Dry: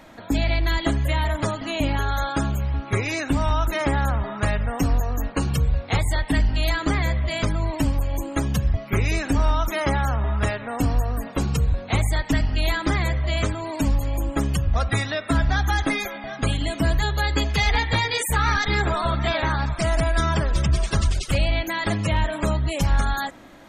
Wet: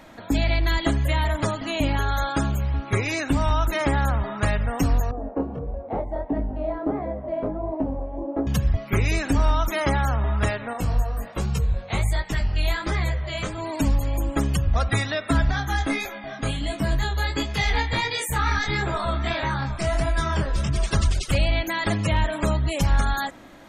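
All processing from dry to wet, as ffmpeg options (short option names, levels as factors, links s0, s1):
-filter_complex "[0:a]asettb=1/sr,asplit=3[s0][s1][s2];[s0]atrim=end=5.114[s3];[s1]atrim=start=5.11:end=8.47,asetpts=PTS-STARTPTS,afade=t=in:d=0.004:c=qsin,afade=t=out:st=3.356:d=0.004:c=qsin,lowshelf=f=190:t=q:w=1.5:g=-8,flanger=delay=18.5:depth=7.8:speed=1.5,lowpass=f=670:t=q:w=2.1[s4];[s2]atrim=start=8.466[s5];[s3][s4]acrossfade=d=0.004:c1=hsin:c2=qsin[s6];[s6][s5]acrossfade=d=0.004:c1=qsin:c2=hsin,asettb=1/sr,asplit=3[s7][s8][s9];[s7]atrim=end=10.734[s10];[s8]atrim=start=10.73:end=13.58,asetpts=PTS-STARTPTS,afade=t=in:d=0.004:c=qsin,afade=t=out:st=2.846:d=0.004:c=qsin,equalizer=f=270:w=7.7:g=-13.5,flanger=delay=15.5:depth=7.8:speed=1.3[s11];[s9]atrim=start=13.576[s12];[s10][s11]acrossfade=d=0.004:c1=hsin:c2=qsin[s13];[s13][s12]acrossfade=d=0.004:c1=qsin:c2=hsin,asettb=1/sr,asplit=3[s14][s15][s16];[s14]atrim=end=15.514[s17];[s15]atrim=start=15.51:end=20.76,asetpts=PTS-STARTPTS,afade=t=in:d=0.004:c=qsin,afade=t=out:st=5.246:d=0.004:c=qsin,flanger=delay=20:depth=6.2:speed=1.5,asplit=2[s18][s19];[s19]adelay=15,volume=0.266[s20];[s18][s20]amix=inputs=2:normalize=0,atrim=end_sample=231525[s21];[s16]atrim=start=20.756[s22];[s17][s21]acrossfade=d=0.004:c1=hsin:c2=qsin[s23];[s23][s22]acrossfade=d=0.004:c1=qsin:c2=hsin"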